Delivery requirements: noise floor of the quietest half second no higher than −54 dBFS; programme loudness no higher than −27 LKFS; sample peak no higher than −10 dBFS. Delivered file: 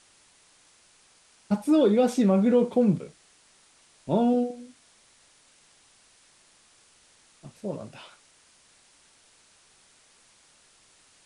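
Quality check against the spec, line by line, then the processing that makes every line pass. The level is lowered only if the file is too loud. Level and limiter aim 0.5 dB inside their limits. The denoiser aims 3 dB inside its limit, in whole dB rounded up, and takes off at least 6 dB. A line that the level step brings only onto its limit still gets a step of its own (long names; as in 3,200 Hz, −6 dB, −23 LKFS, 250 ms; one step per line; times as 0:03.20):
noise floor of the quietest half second −60 dBFS: in spec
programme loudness −24.0 LKFS: out of spec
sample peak −11.0 dBFS: in spec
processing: level −3.5 dB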